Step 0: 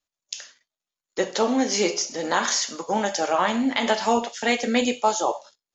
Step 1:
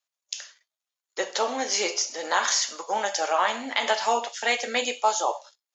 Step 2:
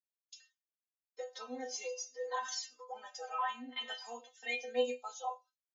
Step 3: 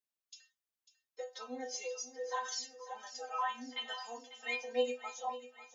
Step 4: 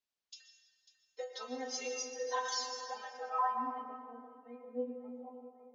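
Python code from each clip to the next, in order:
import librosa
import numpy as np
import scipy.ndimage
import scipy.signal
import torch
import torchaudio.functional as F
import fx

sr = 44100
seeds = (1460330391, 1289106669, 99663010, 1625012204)

y1 = scipy.signal.sosfilt(scipy.signal.butter(2, 590.0, 'highpass', fs=sr, output='sos'), x)
y2 = fx.stiff_resonator(y1, sr, f0_hz=250.0, decay_s=0.21, stiffness=0.002)
y2 = fx.spectral_expand(y2, sr, expansion=1.5)
y3 = fx.echo_feedback(y2, sr, ms=546, feedback_pct=51, wet_db=-14.0)
y4 = fx.filter_sweep_lowpass(y3, sr, from_hz=5300.0, to_hz=290.0, start_s=2.74, end_s=4.02, q=1.2)
y4 = fx.rev_plate(y4, sr, seeds[0], rt60_s=2.3, hf_ratio=0.55, predelay_ms=95, drr_db=5.5)
y4 = y4 * librosa.db_to_amplitude(1.0)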